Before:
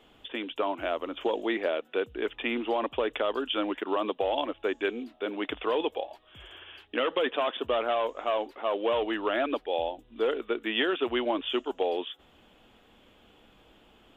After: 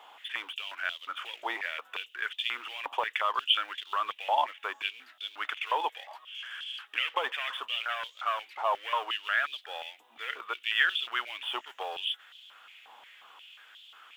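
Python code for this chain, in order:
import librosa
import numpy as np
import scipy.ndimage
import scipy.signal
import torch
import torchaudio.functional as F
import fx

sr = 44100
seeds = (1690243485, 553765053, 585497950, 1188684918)

y = fx.law_mismatch(x, sr, coded='mu')
y = fx.filter_held_highpass(y, sr, hz=5.6, low_hz=890.0, high_hz=3400.0)
y = y * librosa.db_to_amplitude(-3.5)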